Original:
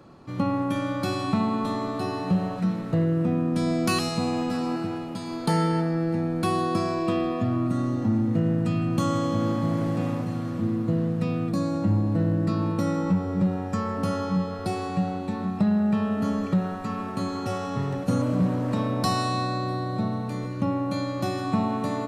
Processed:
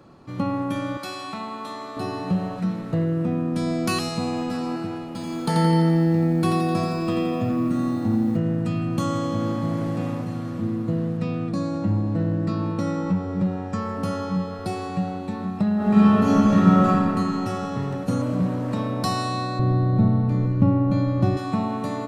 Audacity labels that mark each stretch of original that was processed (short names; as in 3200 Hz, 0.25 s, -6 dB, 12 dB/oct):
0.970000	1.970000	HPF 920 Hz 6 dB/oct
5.060000	8.370000	lo-fi delay 85 ms, feedback 55%, word length 9-bit, level -4 dB
11.170000	13.820000	LPF 7700 Hz
15.750000	16.860000	reverb throw, RT60 2.9 s, DRR -10 dB
19.590000	21.370000	RIAA curve playback